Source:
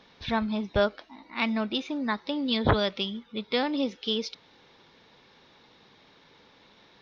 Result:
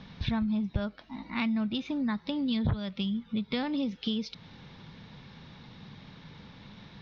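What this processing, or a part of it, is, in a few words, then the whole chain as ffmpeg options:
jukebox: -af "lowpass=5700,lowshelf=frequency=250:width_type=q:width=1.5:gain=12.5,acompressor=threshold=-34dB:ratio=4,volume=4dB"

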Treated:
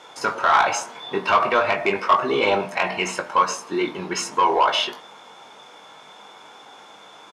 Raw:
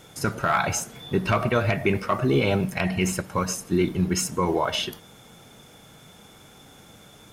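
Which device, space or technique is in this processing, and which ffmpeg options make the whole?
intercom: -filter_complex "[0:a]highpass=450,lowpass=5000,equalizer=frequency=970:width_type=o:width=0.53:gain=10,bandreject=frequency=85.8:width_type=h:width=4,bandreject=frequency=171.6:width_type=h:width=4,bandreject=frequency=257.4:width_type=h:width=4,bandreject=frequency=343.2:width_type=h:width=4,bandreject=frequency=429:width_type=h:width=4,bandreject=frequency=514.8:width_type=h:width=4,bandreject=frequency=600.6:width_type=h:width=4,bandreject=frequency=686.4:width_type=h:width=4,bandreject=frequency=772.2:width_type=h:width=4,bandreject=frequency=858:width_type=h:width=4,bandreject=frequency=943.8:width_type=h:width=4,bandreject=frequency=1029.6:width_type=h:width=4,bandreject=frequency=1115.4:width_type=h:width=4,bandreject=frequency=1201.2:width_type=h:width=4,bandreject=frequency=1287:width_type=h:width=4,bandreject=frequency=1372.8:width_type=h:width=4,bandreject=frequency=1458.6:width_type=h:width=4,bandreject=frequency=1544.4:width_type=h:width=4,bandreject=frequency=1630.2:width_type=h:width=4,bandreject=frequency=1716:width_type=h:width=4,bandreject=frequency=1801.8:width_type=h:width=4,bandreject=frequency=1887.6:width_type=h:width=4,bandreject=frequency=1973.4:width_type=h:width=4,bandreject=frequency=2059.2:width_type=h:width=4,bandreject=frequency=2145:width_type=h:width=4,bandreject=frequency=2230.8:width_type=h:width=4,bandreject=frequency=2316.6:width_type=h:width=4,bandreject=frequency=2402.4:width_type=h:width=4,bandreject=frequency=2488.2:width_type=h:width=4,bandreject=frequency=2574:width_type=h:width=4,asoftclip=type=tanh:threshold=-14.5dB,asplit=2[link_01][link_02];[link_02]adelay=20,volume=-7dB[link_03];[link_01][link_03]amix=inputs=2:normalize=0,volume=5dB"

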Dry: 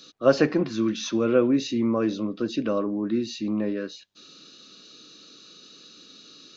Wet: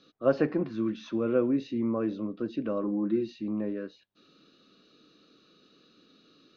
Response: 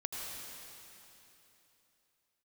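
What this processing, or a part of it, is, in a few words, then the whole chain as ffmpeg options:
phone in a pocket: -filter_complex "[0:a]lowpass=3800,highshelf=frequency=2300:gain=-10,asettb=1/sr,asplit=3[link_01][link_02][link_03];[link_01]atrim=end=2.834[link_04];[link_02]atrim=start=2.83:end=3.32,asetpts=PTS-STARTPTS,afade=type=in:duration=0.004:curve=qsin,afade=type=out:start_time=0.486:duration=0.004:curve=qsin,aecho=1:1:5.8:0.96,atrim=end_sample=21609[link_05];[link_03]atrim=start=3.316[link_06];[link_04][link_05]acrossfade=duration=0.004:curve1=hsin:curve2=qsin[link_07];[link_07][link_06]acrossfade=duration=0.004:curve1=qsin:curve2=hsin,volume=-5dB"

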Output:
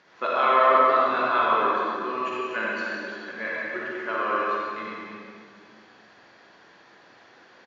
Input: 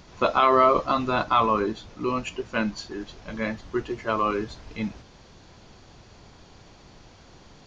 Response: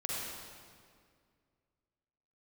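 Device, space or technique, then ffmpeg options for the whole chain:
station announcement: -filter_complex "[0:a]highpass=350,lowpass=4500,equalizer=frequency=1700:width_type=o:width=0.52:gain=11,aecho=1:1:183.7|259.5:0.316|0.282[link_01];[1:a]atrim=start_sample=2205[link_02];[link_01][link_02]afir=irnorm=-1:irlink=0,volume=-5.5dB"

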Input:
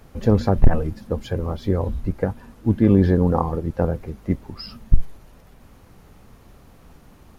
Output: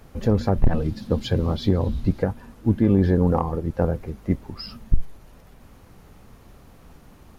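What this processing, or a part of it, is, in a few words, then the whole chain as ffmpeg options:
soft clipper into limiter: -filter_complex "[0:a]asettb=1/sr,asplit=3[link_01][link_02][link_03];[link_01]atrim=end=0.654[link_04];[link_02]atrim=start=0.65:end=2.23,asetpts=PTS-STARTPTS,afade=type=in:duration=0.004:curve=qsin,afade=type=out:start_time=1.576:duration=0.004:curve=qsin,equalizer=frequency=125:width_type=o:width=1:gain=5,equalizer=frequency=250:width_type=o:width=1:gain=5,equalizer=frequency=4000:width_type=o:width=1:gain=11[link_05];[link_03]atrim=start=2.226[link_06];[link_04][link_05]acrossfade=duration=0.004:curve1=hsin:curve2=qsin[link_07];[link_07][link_06]acrossfade=duration=0.004:curve1=qsin:curve2=hsin,asoftclip=type=tanh:threshold=-3dB,alimiter=limit=-9dB:level=0:latency=1:release=388"

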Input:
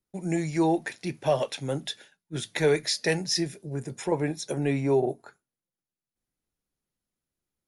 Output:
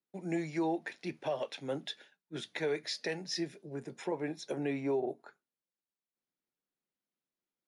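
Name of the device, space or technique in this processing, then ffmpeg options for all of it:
DJ mixer with the lows and highs turned down: -filter_complex "[0:a]acrossover=split=170 5200:gain=0.0794 1 0.2[link_01][link_02][link_03];[link_01][link_02][link_03]amix=inputs=3:normalize=0,alimiter=limit=-19.5dB:level=0:latency=1:release=255,volume=-5dB"

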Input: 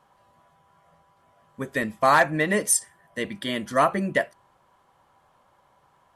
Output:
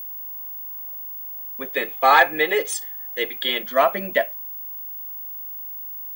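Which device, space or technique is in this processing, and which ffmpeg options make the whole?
old television with a line whistle: -filter_complex "[0:a]asettb=1/sr,asplit=3[link_01][link_02][link_03];[link_01]atrim=end=1.764[link_04];[link_02]atrim=start=1.76:end=3.63,asetpts=PTS-STARTPTS,afade=type=in:duration=0.004:curve=qsin,afade=type=out:start_time=1.866:duration=0.004:curve=qsin,aecho=1:1:2.4:0.96,atrim=end_sample=82467[link_05];[link_03]atrim=start=3.626[link_06];[link_04][link_05]acrossfade=duration=0.004:curve1=hsin:curve2=qsin[link_07];[link_07][link_06]acrossfade=duration=0.004:curve1=qsin:curve2=hsin,highpass=frequency=230:width=0.5412,highpass=frequency=230:width=1.3066,equalizer=frequency=320:width_type=q:width=4:gain=-7,equalizer=frequency=640:width_type=q:width=4:gain=6,equalizer=frequency=2300:width_type=q:width=4:gain=7,equalizer=frequency=3400:width_type=q:width=4:gain=8,equalizer=frequency=5500:width_type=q:width=4:gain=-7,lowpass=frequency=6800:width=0.5412,lowpass=frequency=6800:width=1.3066,aeval=exprs='val(0)+0.0282*sin(2*PI*15625*n/s)':channel_layout=same"

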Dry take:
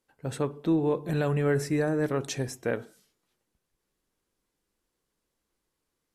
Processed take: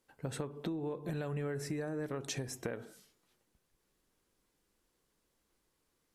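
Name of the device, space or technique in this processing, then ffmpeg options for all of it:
serial compression, peaks first: -af "acompressor=threshold=-33dB:ratio=6,acompressor=threshold=-39dB:ratio=2.5,volume=2.5dB"

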